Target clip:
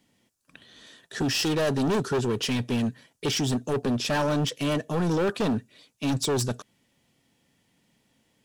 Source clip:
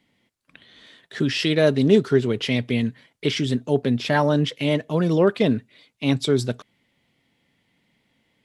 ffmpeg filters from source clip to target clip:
-af "highshelf=f=4.8k:t=q:w=1.5:g=6.5,asoftclip=type=hard:threshold=-22dB,bandreject=f=2.1k:w=7.2"

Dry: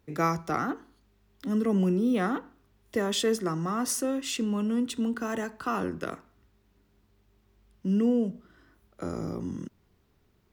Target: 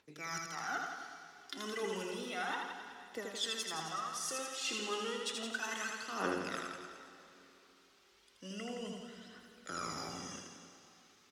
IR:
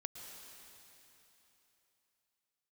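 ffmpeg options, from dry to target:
-filter_complex "[0:a]lowpass=6.4k,aderivative,areverse,acompressor=threshold=-53dB:ratio=16,areverse,atempo=0.93,aphaser=in_gain=1:out_gain=1:delay=2.9:decay=0.66:speed=0.32:type=triangular,aecho=1:1:80|168|264.8|371.3|488.4:0.631|0.398|0.251|0.158|0.1,asplit=2[a][b];[1:a]atrim=start_sample=2205,lowpass=6.2k[c];[b][c]afir=irnorm=-1:irlink=0,volume=-0.5dB[d];[a][d]amix=inputs=2:normalize=0,volume=11dB"

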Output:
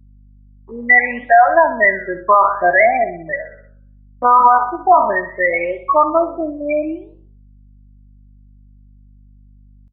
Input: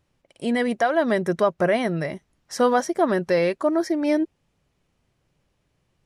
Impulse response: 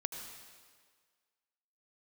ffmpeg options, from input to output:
-af "afftfilt=real='re*gte(hypot(re,im),0.224)':imag='im*gte(hypot(re,im),0.224)':win_size=1024:overlap=0.75,agate=range=-33dB:threshold=-36dB:ratio=3:detection=peak,aderivative,aecho=1:1:1:0.6,acontrast=45,bandpass=f=960:t=q:w=1.3:csg=0,flanger=delay=5.4:depth=9.3:regen=76:speed=1.1:shape=sinusoidal,atempo=0.61,aeval=exprs='val(0)+0.0001*(sin(2*PI*50*n/s)+sin(2*PI*2*50*n/s)/2+sin(2*PI*3*50*n/s)/3+sin(2*PI*4*50*n/s)/4+sin(2*PI*5*50*n/s)/5)':c=same,aecho=1:1:62|124|186|248|310:0.224|0.112|0.056|0.028|0.014,alimiter=level_in=35.5dB:limit=-1dB:release=50:level=0:latency=1,volume=-1dB"

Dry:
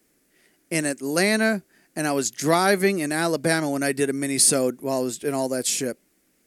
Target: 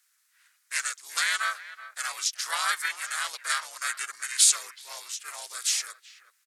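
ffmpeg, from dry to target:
-filter_complex "[0:a]asplit=2[a][b];[b]adelay=380,highpass=300,lowpass=3.4k,asoftclip=type=hard:threshold=-13.5dB,volume=-15dB[c];[a][c]amix=inputs=2:normalize=0,asplit=4[d][e][f][g];[e]asetrate=22050,aresample=44100,atempo=2,volume=-11dB[h];[f]asetrate=33038,aresample=44100,atempo=1.33484,volume=-2dB[i];[g]asetrate=37084,aresample=44100,atempo=1.18921,volume=0dB[j];[d][h][i][j]amix=inputs=4:normalize=0,highpass=f=1.2k:w=0.5412,highpass=f=1.2k:w=1.3066,volume=-5.5dB"

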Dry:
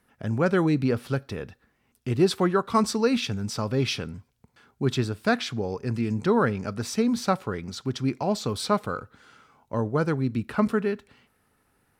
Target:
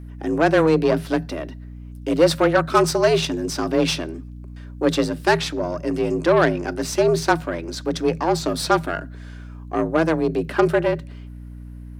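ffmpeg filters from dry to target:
-af "aeval=exprs='0.376*(cos(1*acos(clip(val(0)/0.376,-1,1)))-cos(1*PI/2))+0.0299*(cos(8*acos(clip(val(0)/0.376,-1,1)))-cos(8*PI/2))':c=same,afreqshift=160,aeval=exprs='val(0)+0.01*(sin(2*PI*60*n/s)+sin(2*PI*2*60*n/s)/2+sin(2*PI*3*60*n/s)/3+sin(2*PI*4*60*n/s)/4+sin(2*PI*5*60*n/s)/5)':c=same,volume=5dB"

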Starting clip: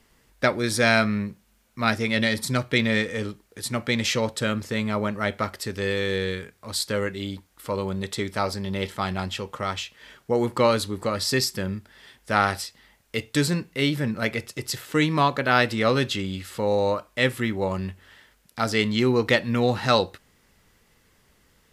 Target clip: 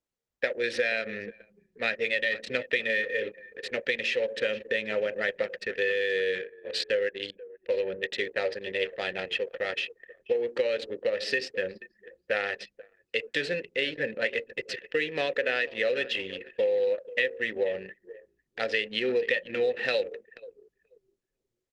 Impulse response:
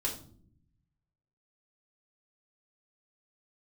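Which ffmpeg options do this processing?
-filter_complex "[0:a]asplit=2[a][b];[b]highpass=f=150:w=0.5412,highpass=f=150:w=1.3066,equalizer=f=210:t=q:w=4:g=6,equalizer=f=400:t=q:w=4:g=5,equalizer=f=2.1k:t=q:w=4:g=-4,equalizer=f=4.7k:t=q:w=4:g=-6,lowpass=f=6.7k:w=0.5412,lowpass=f=6.7k:w=1.3066[c];[1:a]atrim=start_sample=2205[d];[c][d]afir=irnorm=-1:irlink=0,volume=-16.5dB[e];[a][e]amix=inputs=2:normalize=0,adynamicsmooth=sensitivity=8:basefreq=1.6k,asplit=3[f][g][h];[f]bandpass=f=530:t=q:w=8,volume=0dB[i];[g]bandpass=f=1.84k:t=q:w=8,volume=-6dB[j];[h]bandpass=f=2.48k:t=q:w=8,volume=-9dB[k];[i][j][k]amix=inputs=3:normalize=0,equalizer=f=4.5k:w=0.43:g=12,bandreject=f=600:w=12,acompressor=threshold=-31dB:ratio=12,asplit=5[l][m][n][o][p];[m]adelay=482,afreqshift=-32,volume=-16dB[q];[n]adelay=964,afreqshift=-64,volume=-23.7dB[r];[o]adelay=1446,afreqshift=-96,volume=-31.5dB[s];[p]adelay=1928,afreqshift=-128,volume=-39.2dB[t];[l][q][r][s][t]amix=inputs=5:normalize=0,anlmdn=0.0398,volume=8dB" -ar 48000 -c:a libopus -b:a 24k

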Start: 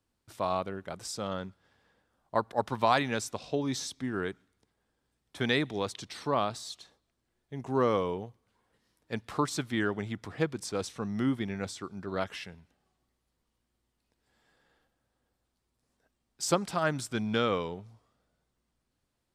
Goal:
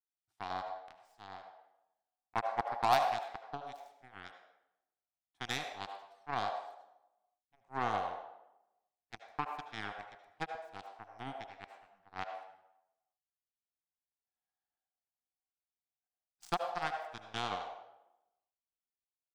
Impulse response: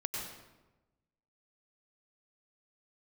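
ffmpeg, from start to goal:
-filter_complex "[0:a]aeval=exprs='0.299*(cos(1*acos(clip(val(0)/0.299,-1,1)))-cos(1*PI/2))+0.0266*(cos(2*acos(clip(val(0)/0.299,-1,1)))-cos(2*PI/2))+0.0944*(cos(3*acos(clip(val(0)/0.299,-1,1)))-cos(3*PI/2))+0.0473*(cos(5*acos(clip(val(0)/0.299,-1,1)))-cos(5*PI/2))+0.0376*(cos(7*acos(clip(val(0)/0.299,-1,1)))-cos(7*PI/2))':c=same,asplit=2[a][b];[b]highpass=f=730:t=q:w=8.1[c];[1:a]atrim=start_sample=2205,asetrate=57330,aresample=44100,highshelf=f=10k:g=-5.5[d];[c][d]afir=irnorm=-1:irlink=0,volume=-2dB[e];[a][e]amix=inputs=2:normalize=0,volume=-6.5dB"

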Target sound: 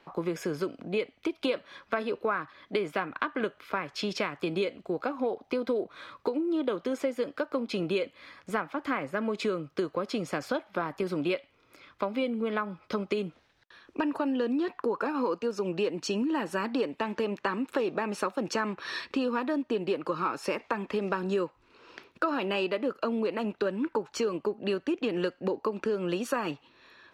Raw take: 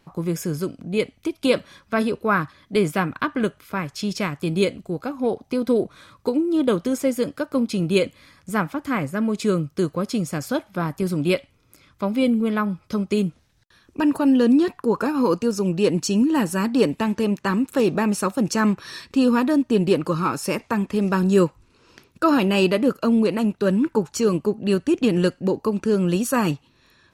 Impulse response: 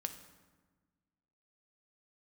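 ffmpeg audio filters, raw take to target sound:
-filter_complex "[0:a]acrossover=split=310 4300:gain=0.158 1 0.126[a][b][c];[a][b][c]amix=inputs=3:normalize=0,acompressor=threshold=-30dB:ratio=6,volume=3.5dB"

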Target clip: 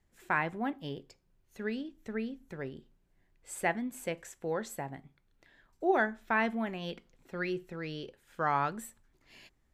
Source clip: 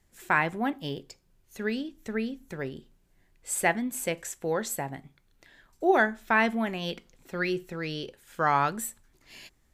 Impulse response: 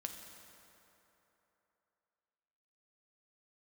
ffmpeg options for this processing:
-af "highshelf=f=4.3k:g=-9,volume=-5dB"

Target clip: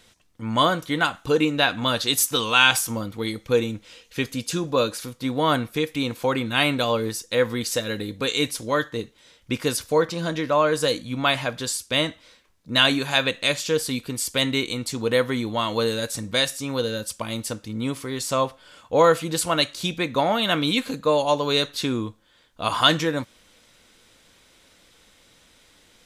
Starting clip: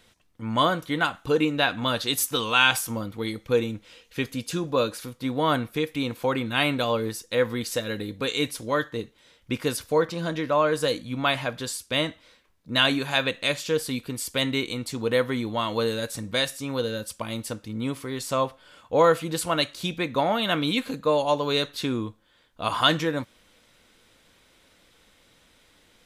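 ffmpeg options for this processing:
-af "equalizer=f=6.6k:w=0.84:g=4.5,volume=2dB"

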